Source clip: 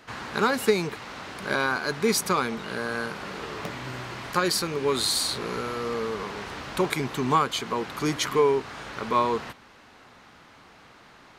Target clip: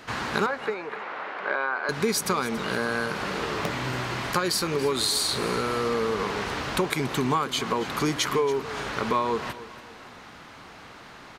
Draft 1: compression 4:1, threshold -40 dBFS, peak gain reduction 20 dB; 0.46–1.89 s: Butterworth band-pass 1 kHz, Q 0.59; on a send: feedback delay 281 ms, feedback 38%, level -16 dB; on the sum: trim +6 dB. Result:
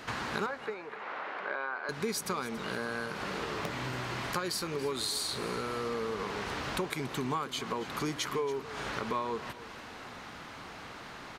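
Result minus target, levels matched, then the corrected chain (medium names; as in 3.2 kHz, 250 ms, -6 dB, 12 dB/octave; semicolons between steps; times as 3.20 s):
compression: peak gain reduction +8.5 dB
compression 4:1, threshold -28.5 dBFS, peak gain reduction 11.5 dB; 0.46–1.89 s: Butterworth band-pass 1 kHz, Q 0.59; on a send: feedback delay 281 ms, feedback 38%, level -16 dB; on the sum: trim +6 dB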